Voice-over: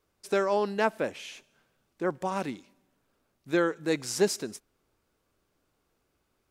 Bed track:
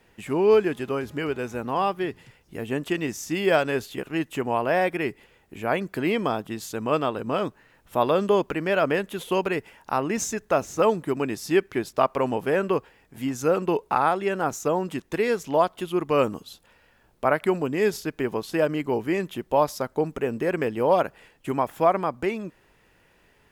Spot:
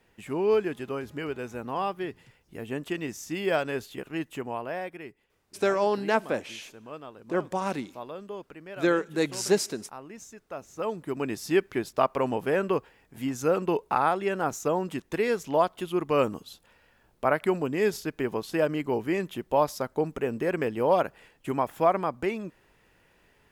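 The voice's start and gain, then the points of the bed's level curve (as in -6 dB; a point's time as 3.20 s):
5.30 s, +1.5 dB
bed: 4.27 s -5.5 dB
5.27 s -18 dB
10.45 s -18 dB
11.31 s -2.5 dB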